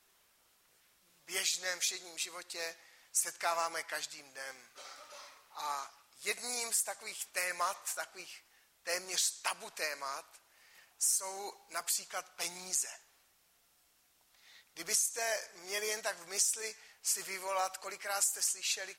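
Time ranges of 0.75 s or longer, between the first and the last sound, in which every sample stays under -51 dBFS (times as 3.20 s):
13.00–14.35 s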